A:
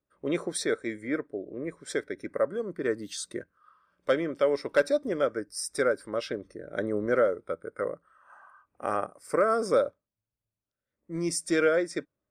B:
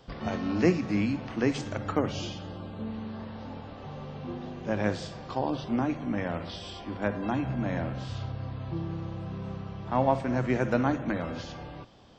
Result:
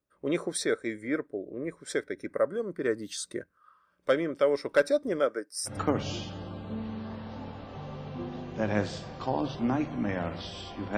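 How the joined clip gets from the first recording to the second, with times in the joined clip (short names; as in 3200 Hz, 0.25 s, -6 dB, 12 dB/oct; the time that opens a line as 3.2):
A
5.19–5.78 HPF 170 Hz -> 1100 Hz
5.71 switch to B from 1.8 s, crossfade 0.14 s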